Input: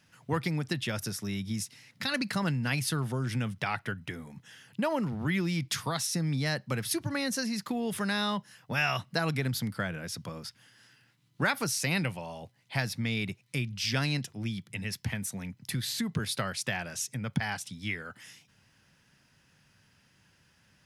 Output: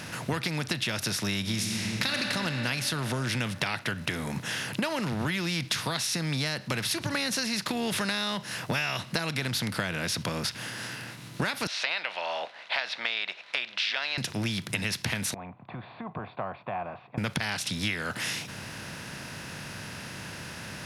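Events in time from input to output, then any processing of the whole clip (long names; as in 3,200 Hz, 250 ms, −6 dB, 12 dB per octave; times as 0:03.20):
0:01.40–0:02.20: thrown reverb, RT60 2.6 s, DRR 2.5 dB
0:11.67–0:14.18: elliptic band-pass filter 640–3,700 Hz, stop band 70 dB
0:15.34–0:17.18: formant resonators in series a
whole clip: compressor on every frequency bin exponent 0.6; dynamic equaliser 3,700 Hz, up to +7 dB, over −43 dBFS, Q 0.71; downward compressor 6 to 1, threshold −33 dBFS; level +6 dB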